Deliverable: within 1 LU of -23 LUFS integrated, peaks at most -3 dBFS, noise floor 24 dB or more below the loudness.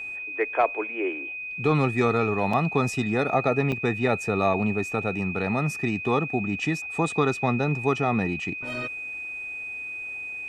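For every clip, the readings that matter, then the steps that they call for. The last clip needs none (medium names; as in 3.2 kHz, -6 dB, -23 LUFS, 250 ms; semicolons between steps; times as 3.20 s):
dropouts 2; longest dropout 4.1 ms; steady tone 2.5 kHz; tone level -32 dBFS; loudness -25.5 LUFS; peak level -10.0 dBFS; loudness target -23.0 LUFS
-> interpolate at 2.53/3.72 s, 4.1 ms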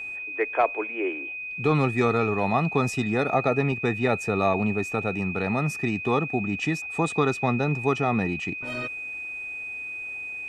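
dropouts 0; steady tone 2.5 kHz; tone level -32 dBFS
-> band-stop 2.5 kHz, Q 30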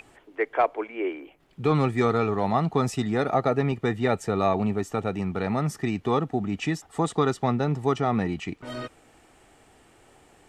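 steady tone not found; loudness -26.0 LUFS; peak level -10.5 dBFS; loudness target -23.0 LUFS
-> trim +3 dB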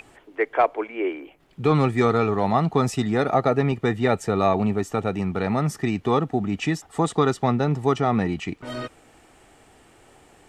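loudness -23.0 LUFS; peak level -7.5 dBFS; noise floor -55 dBFS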